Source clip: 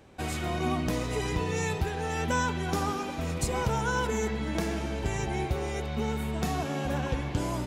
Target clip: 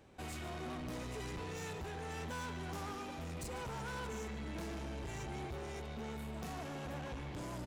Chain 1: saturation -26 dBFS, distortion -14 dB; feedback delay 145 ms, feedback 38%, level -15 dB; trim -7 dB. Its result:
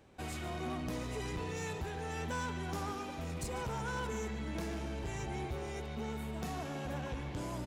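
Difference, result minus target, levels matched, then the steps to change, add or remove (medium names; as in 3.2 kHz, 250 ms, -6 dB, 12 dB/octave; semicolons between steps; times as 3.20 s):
saturation: distortion -6 dB
change: saturation -33.5 dBFS, distortion -8 dB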